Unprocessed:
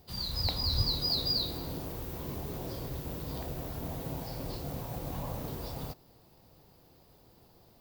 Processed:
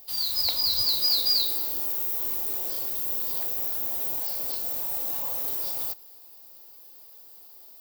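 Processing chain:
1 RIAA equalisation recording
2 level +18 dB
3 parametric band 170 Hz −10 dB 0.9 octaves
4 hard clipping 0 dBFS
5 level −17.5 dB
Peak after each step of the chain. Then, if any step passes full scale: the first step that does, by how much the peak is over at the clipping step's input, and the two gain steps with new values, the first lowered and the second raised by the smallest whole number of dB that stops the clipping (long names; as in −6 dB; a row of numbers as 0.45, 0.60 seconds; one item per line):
−10.5, +7.5, +7.5, 0.0, −17.5 dBFS
step 2, 7.5 dB
step 2 +10 dB, step 5 −9.5 dB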